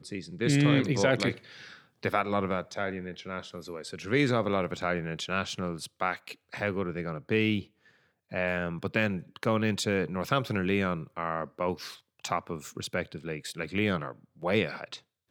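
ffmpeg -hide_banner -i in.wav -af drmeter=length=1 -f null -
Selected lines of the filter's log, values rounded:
Channel 1: DR: 14.5
Overall DR: 14.5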